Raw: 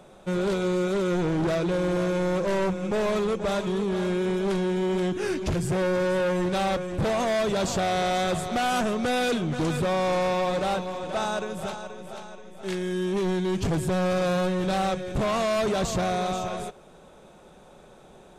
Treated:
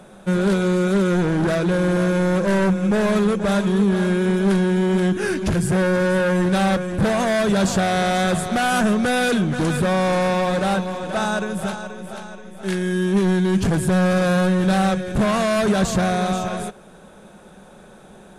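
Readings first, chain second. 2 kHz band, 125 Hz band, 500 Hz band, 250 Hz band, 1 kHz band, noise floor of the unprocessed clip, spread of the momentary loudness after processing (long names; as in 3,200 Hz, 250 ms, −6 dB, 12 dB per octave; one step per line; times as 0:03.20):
+8.0 dB, +8.5 dB, +4.0 dB, +9.0 dB, +4.5 dB, −51 dBFS, 6 LU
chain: thirty-one-band graphic EQ 200 Hz +9 dB, 1,600 Hz +7 dB, 10,000 Hz +9 dB
level +4 dB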